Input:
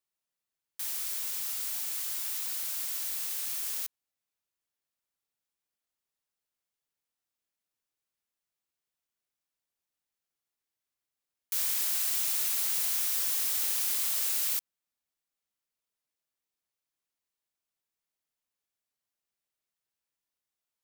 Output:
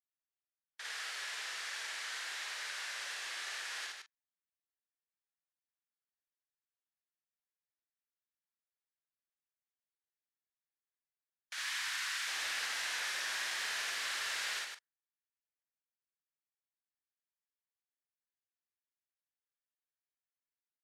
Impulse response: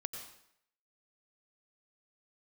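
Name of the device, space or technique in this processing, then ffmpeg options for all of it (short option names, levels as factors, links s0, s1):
intercom: -filter_complex "[0:a]asettb=1/sr,asplit=3[s0][s1][s2];[s0]atrim=end=11.534[s3];[s1]atrim=start=11.53:end=12.27,asetpts=PTS-STARTPTS,afade=t=in:d=0.004:c=qsin,afade=t=out:st=0.736:d=0.004:c=qsin,highpass=f=930:w=0.5412,highpass=f=930:w=1.3066[s4];[s2]atrim=start=12.266[s5];[s3][s4]acrossfade=d=0.004:c1=hsin:c2=qsin[s6];[s6][s5]acrossfade=d=0.004:c1=qsin:c2=hsin,highpass=460,lowpass=4000,equalizer=f=1700:t=o:w=0.58:g=9.5,asoftclip=type=tanh:threshold=0.0224,asplit=2[s7][s8];[s8]adelay=43,volume=0.316[s9];[s7][s9]amix=inputs=2:normalize=0,afftdn=nr=19:nf=-64,aecho=1:1:55.39|154.5:0.891|0.631"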